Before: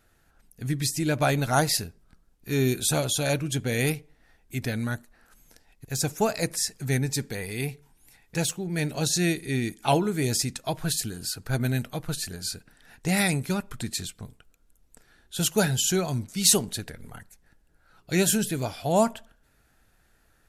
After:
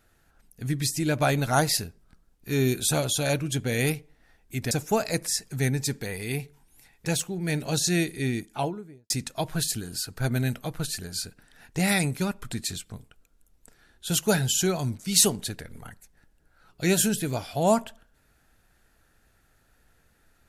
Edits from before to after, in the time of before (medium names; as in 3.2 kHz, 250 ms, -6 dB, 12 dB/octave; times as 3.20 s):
4.71–6.00 s: delete
9.47–10.39 s: studio fade out